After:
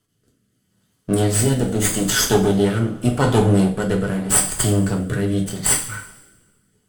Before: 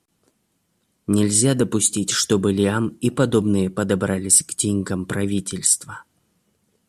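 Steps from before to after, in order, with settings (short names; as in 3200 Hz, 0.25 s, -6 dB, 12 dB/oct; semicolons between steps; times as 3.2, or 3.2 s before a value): minimum comb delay 0.63 ms; two-slope reverb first 0.41 s, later 1.7 s, from -18 dB, DRR -0.5 dB; rotary speaker horn 0.8 Hz; gain +1 dB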